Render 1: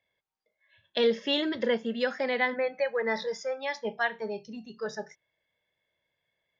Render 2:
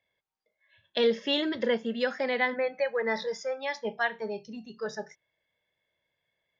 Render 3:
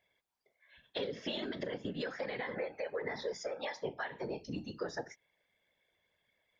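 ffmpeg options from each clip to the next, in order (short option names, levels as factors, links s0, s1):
-af anull
-af "alimiter=limit=0.0794:level=0:latency=1:release=125,acompressor=threshold=0.0141:ratio=10,afftfilt=real='hypot(re,im)*cos(2*PI*random(0))':imag='hypot(re,im)*sin(2*PI*random(1))':win_size=512:overlap=0.75,volume=2.51"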